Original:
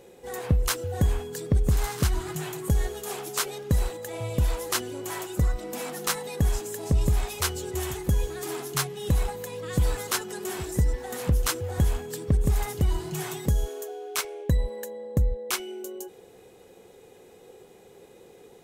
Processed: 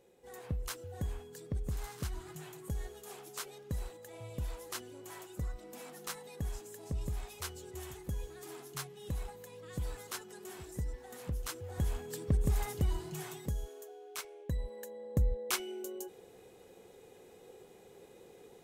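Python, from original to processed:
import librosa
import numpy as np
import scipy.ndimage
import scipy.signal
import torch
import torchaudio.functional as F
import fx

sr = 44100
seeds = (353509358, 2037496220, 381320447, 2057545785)

y = fx.gain(x, sr, db=fx.line((11.47, -14.5), (12.13, -7.0), (12.77, -7.0), (13.65, -13.5), (14.44, -13.5), (15.35, -5.0)))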